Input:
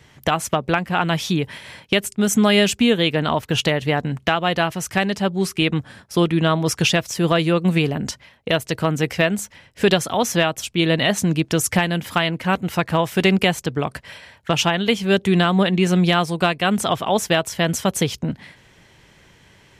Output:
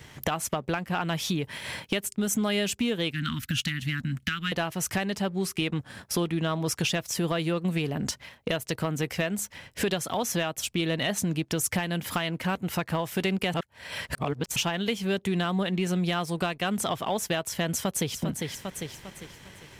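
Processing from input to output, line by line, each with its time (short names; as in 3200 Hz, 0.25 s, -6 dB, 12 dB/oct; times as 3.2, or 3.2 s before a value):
3.11–4.52 Chebyshev band-stop 260–1400 Hz, order 3
13.54–14.56 reverse
17.73–18.17 echo throw 0.4 s, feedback 35%, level -10 dB
whole clip: compressor 3:1, threshold -33 dBFS; high shelf 11000 Hz +8 dB; sample leveller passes 1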